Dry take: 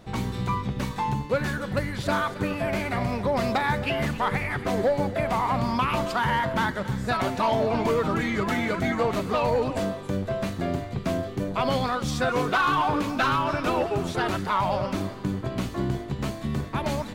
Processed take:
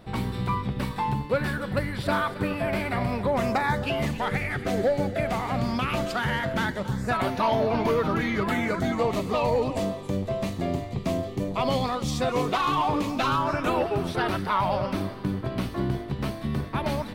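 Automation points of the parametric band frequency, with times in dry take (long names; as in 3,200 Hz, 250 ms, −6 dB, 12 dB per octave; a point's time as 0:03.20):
parametric band −12 dB 0.31 octaves
0:03.20 6,500 Hz
0:04.31 1,000 Hz
0:06.67 1,000 Hz
0:07.31 7,700 Hz
0:08.41 7,700 Hz
0:08.99 1,500 Hz
0:13.22 1,500 Hz
0:13.80 7,000 Hz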